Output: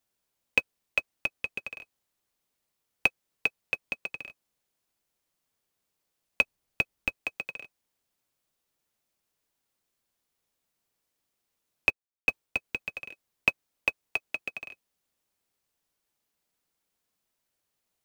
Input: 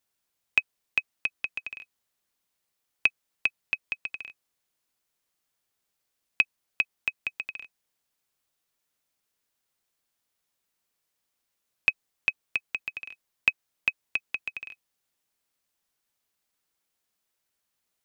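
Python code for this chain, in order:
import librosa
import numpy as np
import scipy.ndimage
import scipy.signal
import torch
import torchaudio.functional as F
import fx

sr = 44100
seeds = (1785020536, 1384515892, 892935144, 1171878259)

p1 = fx.sample_hold(x, sr, seeds[0], rate_hz=2000.0, jitter_pct=20)
p2 = x + F.gain(torch.from_numpy(p1), -12.0).numpy()
p3 = fx.low_shelf(p2, sr, hz=130.0, db=9.5, at=(6.42, 7.13))
p4 = fx.band_widen(p3, sr, depth_pct=70, at=(11.9, 12.64))
y = F.gain(torch.from_numpy(p4), -1.5).numpy()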